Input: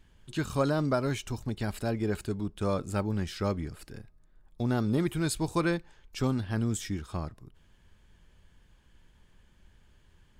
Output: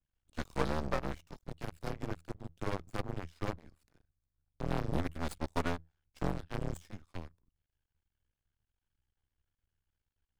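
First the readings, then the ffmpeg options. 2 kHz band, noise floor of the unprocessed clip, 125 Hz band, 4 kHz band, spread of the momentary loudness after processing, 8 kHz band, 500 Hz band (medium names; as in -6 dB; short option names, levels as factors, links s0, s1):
-6.0 dB, -62 dBFS, -9.0 dB, -8.5 dB, 13 LU, -14.0 dB, -8.0 dB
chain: -af "aeval=exprs='0.2*(cos(1*acos(clip(val(0)/0.2,-1,1)))-cos(1*PI/2))+0.0251*(cos(3*acos(clip(val(0)/0.2,-1,1)))-cos(3*PI/2))+0.0158*(cos(7*acos(clip(val(0)/0.2,-1,1)))-cos(7*PI/2))':c=same,afreqshift=-82,aeval=exprs='max(val(0),0)':c=same,adynamicequalizer=threshold=0.00251:dfrequency=2400:dqfactor=0.7:tfrequency=2400:tqfactor=0.7:attack=5:release=100:ratio=0.375:range=2.5:mode=cutabove:tftype=highshelf,volume=1.12"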